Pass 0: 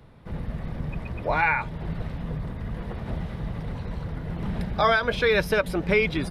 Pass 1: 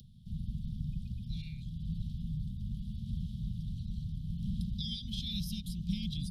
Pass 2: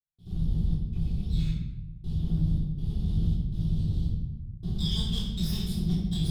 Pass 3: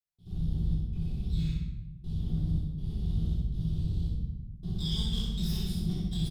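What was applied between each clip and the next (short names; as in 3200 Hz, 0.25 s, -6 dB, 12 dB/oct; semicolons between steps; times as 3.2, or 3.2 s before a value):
Chebyshev band-stop 220–3200 Hz, order 5; upward compressor, threshold -46 dBFS; gain -5 dB
minimum comb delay 0.59 ms; step gate ".xxx.xxx...xxx" 81 bpm -60 dB; shoebox room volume 440 m³, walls mixed, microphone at 3.4 m
feedback echo 62 ms, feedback 40%, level -5 dB; gain -4 dB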